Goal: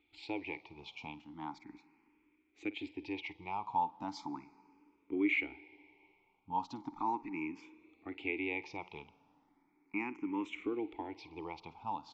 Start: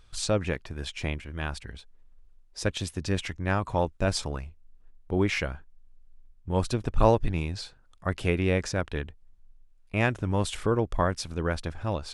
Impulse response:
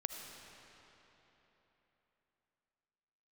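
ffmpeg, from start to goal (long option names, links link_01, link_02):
-filter_complex "[0:a]lowshelf=frequency=280:gain=-8.5,acrossover=split=420[link_01][link_02];[link_01]acompressor=threshold=-37dB:ratio=6[link_03];[link_02]alimiter=limit=-19dB:level=0:latency=1[link_04];[link_03][link_04]amix=inputs=2:normalize=0,asplit=3[link_05][link_06][link_07];[link_05]bandpass=frequency=300:width_type=q:width=8,volume=0dB[link_08];[link_06]bandpass=frequency=870:width_type=q:width=8,volume=-6dB[link_09];[link_07]bandpass=frequency=2240:width_type=q:width=8,volume=-9dB[link_10];[link_08][link_09][link_10]amix=inputs=3:normalize=0,asplit=2[link_11][link_12];[1:a]atrim=start_sample=2205,adelay=51[link_13];[link_12][link_13]afir=irnorm=-1:irlink=0,volume=-16dB[link_14];[link_11][link_14]amix=inputs=2:normalize=0,aresample=16000,aresample=44100,asplit=2[link_15][link_16];[link_16]afreqshift=0.37[link_17];[link_15][link_17]amix=inputs=2:normalize=1,volume=10.5dB"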